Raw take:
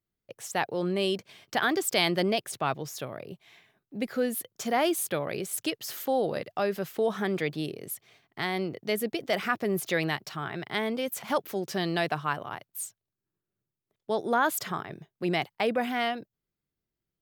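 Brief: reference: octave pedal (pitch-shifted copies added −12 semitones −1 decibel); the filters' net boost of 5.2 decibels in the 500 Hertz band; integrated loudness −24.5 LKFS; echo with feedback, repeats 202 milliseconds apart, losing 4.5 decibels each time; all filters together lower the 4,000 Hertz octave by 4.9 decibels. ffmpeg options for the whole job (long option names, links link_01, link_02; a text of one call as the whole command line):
ffmpeg -i in.wav -filter_complex "[0:a]equalizer=frequency=500:width_type=o:gain=6.5,equalizer=frequency=4000:width_type=o:gain=-7,aecho=1:1:202|404|606|808|1010|1212|1414|1616|1818:0.596|0.357|0.214|0.129|0.0772|0.0463|0.0278|0.0167|0.01,asplit=2[link_01][link_02];[link_02]asetrate=22050,aresample=44100,atempo=2,volume=-1dB[link_03];[link_01][link_03]amix=inputs=2:normalize=0,volume=-1dB" out.wav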